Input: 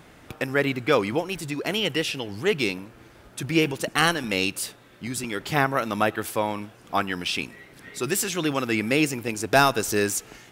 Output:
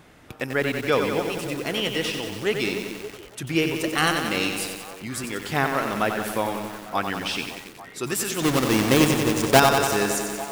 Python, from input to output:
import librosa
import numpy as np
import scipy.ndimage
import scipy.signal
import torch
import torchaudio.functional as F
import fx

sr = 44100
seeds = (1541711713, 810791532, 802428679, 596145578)

y = fx.halfwave_hold(x, sr, at=(8.42, 9.6))
y = fx.echo_stepped(y, sr, ms=282, hz=310.0, octaves=0.7, feedback_pct=70, wet_db=-10)
y = fx.echo_crushed(y, sr, ms=92, feedback_pct=80, bits=6, wet_db=-6)
y = F.gain(torch.from_numpy(y), -1.5).numpy()